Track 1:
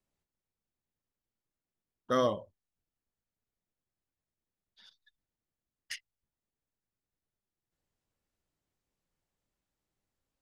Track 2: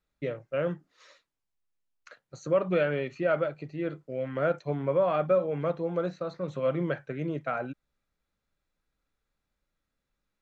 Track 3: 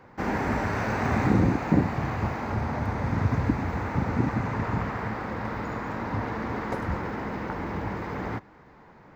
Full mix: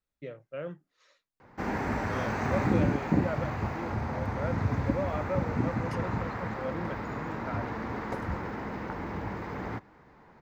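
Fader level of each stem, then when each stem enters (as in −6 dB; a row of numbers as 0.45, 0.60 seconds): −10.5, −8.5, −4.0 decibels; 0.00, 0.00, 1.40 seconds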